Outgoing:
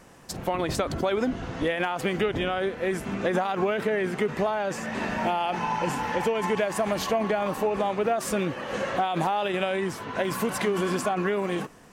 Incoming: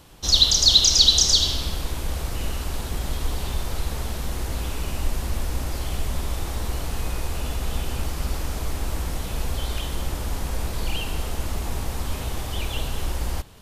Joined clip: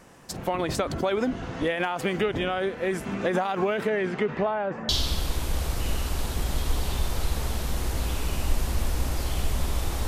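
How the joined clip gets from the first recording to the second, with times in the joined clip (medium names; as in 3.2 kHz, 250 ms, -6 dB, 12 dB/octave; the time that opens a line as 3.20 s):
outgoing
3.89–4.89 s: low-pass 8.9 kHz -> 1.1 kHz
4.89 s: go over to incoming from 1.44 s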